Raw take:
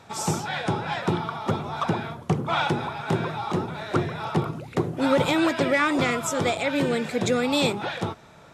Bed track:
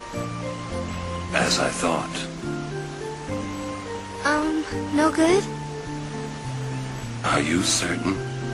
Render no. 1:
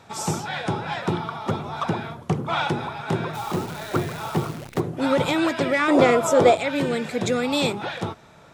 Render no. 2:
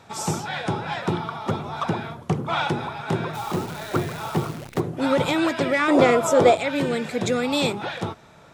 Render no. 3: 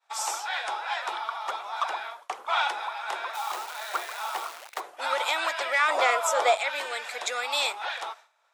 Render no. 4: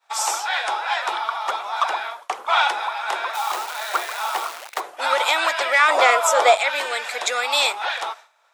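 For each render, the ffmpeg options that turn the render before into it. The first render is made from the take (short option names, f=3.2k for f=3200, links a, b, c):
-filter_complex "[0:a]asplit=3[a][b][c];[a]afade=t=out:st=3.33:d=0.02[d];[b]acrusher=bits=7:dc=4:mix=0:aa=0.000001,afade=t=in:st=3.33:d=0.02,afade=t=out:st=4.79:d=0.02[e];[c]afade=t=in:st=4.79:d=0.02[f];[d][e][f]amix=inputs=3:normalize=0,asettb=1/sr,asplit=3[g][h][i];[g]atrim=end=5.884[j];[h]atrim=start=5.88:end=6.56,asetpts=PTS-STARTPTS,afade=t=in:d=0.004:c=qsin,afade=t=out:st=0.676:d=0.004:c=qsin,equalizer=f=540:t=o:w=1.8:g=12[k];[i]atrim=start=6.556[l];[j][k]acrossfade=d=0.004:c1=hsin:c2=qsin[m];[m][l]acrossfade=d=0.004:c1=qsin:c2=hsin"
-af anull
-af "highpass=f=730:w=0.5412,highpass=f=730:w=1.3066,agate=range=-33dB:threshold=-42dB:ratio=3:detection=peak"
-af "volume=7.5dB"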